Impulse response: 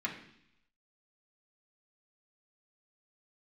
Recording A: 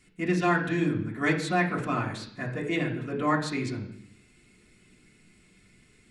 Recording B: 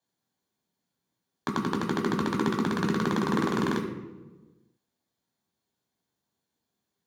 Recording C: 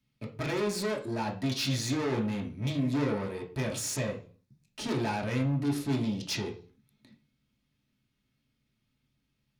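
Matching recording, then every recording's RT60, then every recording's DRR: A; 0.70, 1.3, 0.40 seconds; −4.0, 0.0, 0.0 decibels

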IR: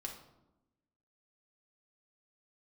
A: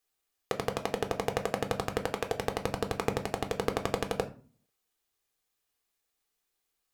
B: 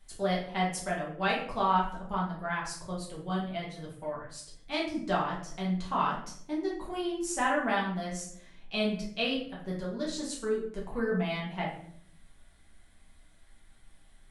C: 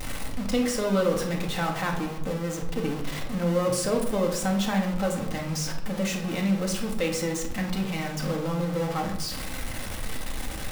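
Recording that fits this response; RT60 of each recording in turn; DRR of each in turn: C; 0.40, 0.60, 0.95 seconds; 5.5, −5.5, 0.0 decibels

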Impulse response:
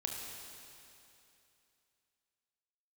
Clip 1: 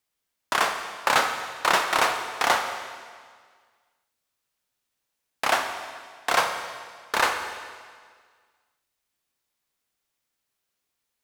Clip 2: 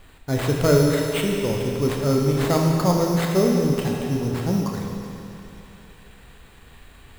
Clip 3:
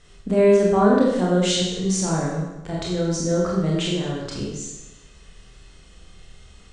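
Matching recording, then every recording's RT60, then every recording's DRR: 2; 1.8, 2.8, 0.95 seconds; 5.0, 0.0, −5.0 decibels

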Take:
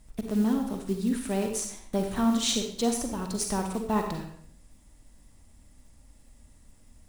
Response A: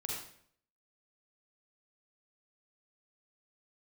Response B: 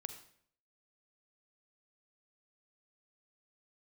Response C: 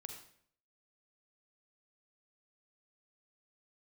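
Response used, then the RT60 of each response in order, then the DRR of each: C; 0.60, 0.60, 0.60 seconds; −3.0, 8.5, 4.0 decibels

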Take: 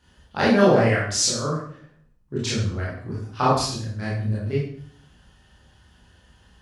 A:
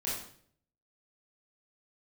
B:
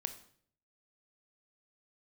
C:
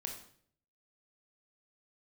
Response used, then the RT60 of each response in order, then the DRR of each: A; 0.55, 0.55, 0.55 seconds; −8.0, 8.5, 1.5 decibels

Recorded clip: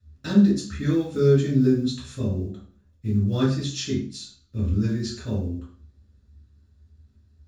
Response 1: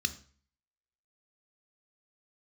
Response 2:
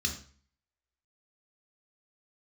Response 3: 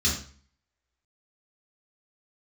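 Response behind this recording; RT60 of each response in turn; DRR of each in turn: 3; 0.45, 0.45, 0.45 seconds; 10.5, 2.5, −5.5 decibels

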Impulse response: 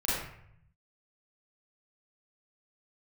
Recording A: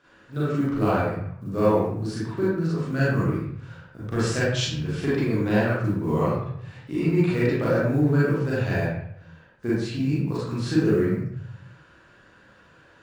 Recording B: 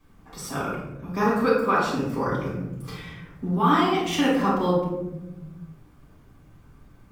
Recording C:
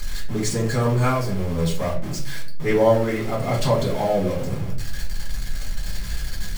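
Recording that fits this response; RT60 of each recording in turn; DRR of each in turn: A; 0.65, 1.0, 0.45 seconds; −9.5, −9.0, −5.0 decibels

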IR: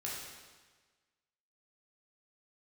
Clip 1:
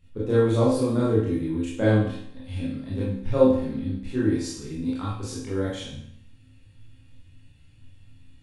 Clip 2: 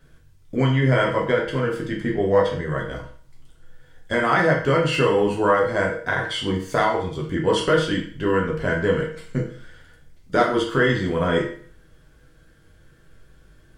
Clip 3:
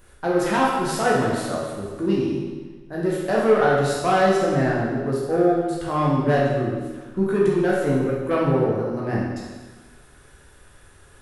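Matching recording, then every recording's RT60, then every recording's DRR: 3; 0.65, 0.45, 1.4 seconds; −9.0, −2.5, −5.5 decibels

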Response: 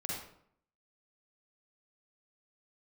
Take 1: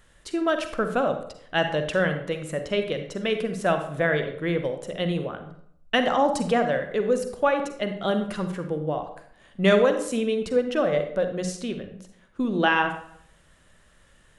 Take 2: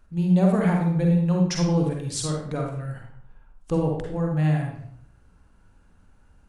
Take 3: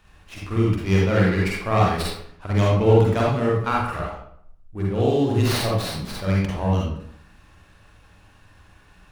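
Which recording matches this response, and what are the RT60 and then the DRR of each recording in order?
3; 0.65, 0.65, 0.65 seconds; 6.5, 0.0, −4.5 decibels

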